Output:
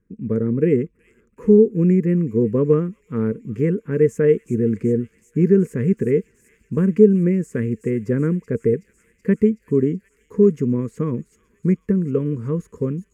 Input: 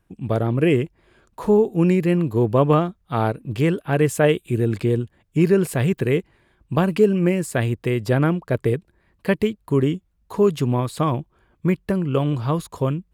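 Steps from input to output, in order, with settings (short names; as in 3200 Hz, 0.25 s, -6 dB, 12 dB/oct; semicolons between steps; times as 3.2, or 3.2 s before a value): EQ curve 140 Hz 0 dB, 220 Hz +11 dB, 330 Hz 0 dB, 460 Hz +9 dB, 720 Hz -28 dB, 1000 Hz -11 dB, 2000 Hz -2 dB, 3800 Hz -27 dB, 6500 Hz -5 dB, 9800 Hz -15 dB; on a send: thin delay 0.376 s, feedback 77%, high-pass 4200 Hz, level -8.5 dB; on the sum: gain -3.5 dB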